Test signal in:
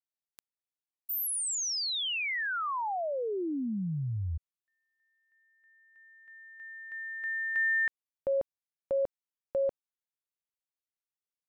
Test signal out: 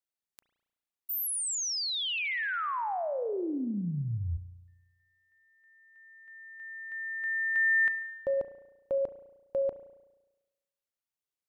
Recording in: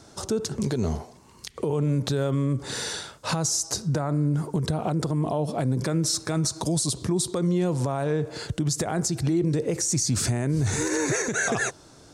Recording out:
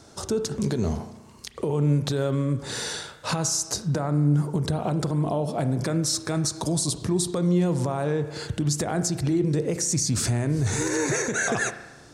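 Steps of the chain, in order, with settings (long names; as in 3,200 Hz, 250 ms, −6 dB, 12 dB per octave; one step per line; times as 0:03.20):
spring reverb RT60 1.1 s, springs 34 ms, chirp 70 ms, DRR 10.5 dB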